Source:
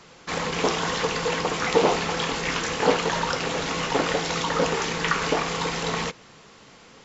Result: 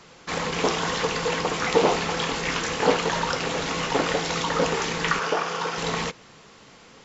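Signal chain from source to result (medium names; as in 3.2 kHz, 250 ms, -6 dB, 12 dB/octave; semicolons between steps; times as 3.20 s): 5.19–5.78 s: cabinet simulation 220–6300 Hz, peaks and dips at 270 Hz -9 dB, 1.4 kHz +5 dB, 2.1 kHz -6 dB, 4 kHz -7 dB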